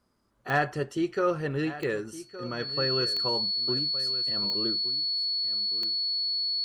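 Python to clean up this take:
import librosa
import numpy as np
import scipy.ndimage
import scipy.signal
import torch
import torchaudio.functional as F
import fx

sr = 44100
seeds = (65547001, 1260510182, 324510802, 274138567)

y = fx.fix_declip(x, sr, threshold_db=-13.5)
y = fx.fix_declick_ar(y, sr, threshold=10.0)
y = fx.notch(y, sr, hz=4400.0, q=30.0)
y = fx.fix_echo_inverse(y, sr, delay_ms=1165, level_db=-15.0)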